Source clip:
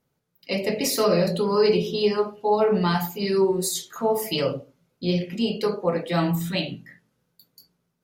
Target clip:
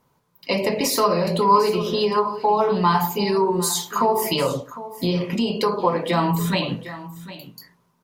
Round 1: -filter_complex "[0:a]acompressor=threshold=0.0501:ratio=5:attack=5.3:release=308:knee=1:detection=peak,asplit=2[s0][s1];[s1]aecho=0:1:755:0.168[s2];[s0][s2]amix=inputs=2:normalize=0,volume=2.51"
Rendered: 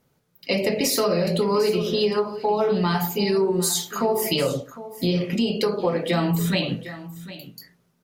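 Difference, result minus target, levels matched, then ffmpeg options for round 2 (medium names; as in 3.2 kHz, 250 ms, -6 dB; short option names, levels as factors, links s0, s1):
1 kHz band -7.0 dB
-filter_complex "[0:a]acompressor=threshold=0.0501:ratio=5:attack=5.3:release=308:knee=1:detection=peak,equalizer=f=1000:w=3.8:g=15,asplit=2[s0][s1];[s1]aecho=0:1:755:0.168[s2];[s0][s2]amix=inputs=2:normalize=0,volume=2.51"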